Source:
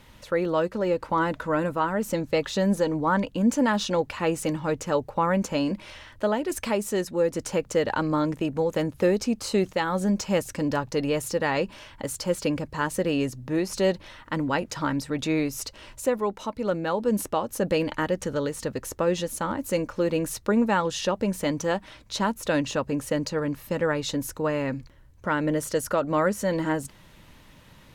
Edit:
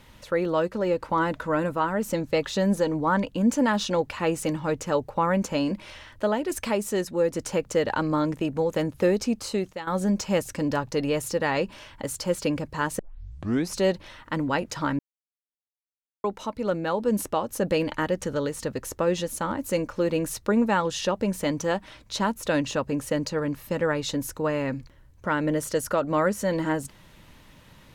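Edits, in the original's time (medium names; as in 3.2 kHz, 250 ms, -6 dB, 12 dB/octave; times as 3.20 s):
9.33–9.87 s: fade out, to -13 dB
12.99 s: tape start 0.71 s
14.99–16.24 s: mute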